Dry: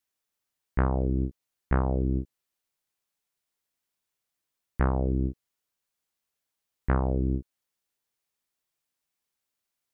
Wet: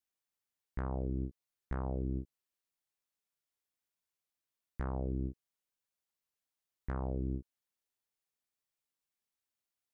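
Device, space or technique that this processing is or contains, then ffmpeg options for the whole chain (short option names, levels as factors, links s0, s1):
clipper into limiter: -af "asoftclip=type=hard:threshold=0.251,alimiter=limit=0.112:level=0:latency=1:release=160,volume=0.422"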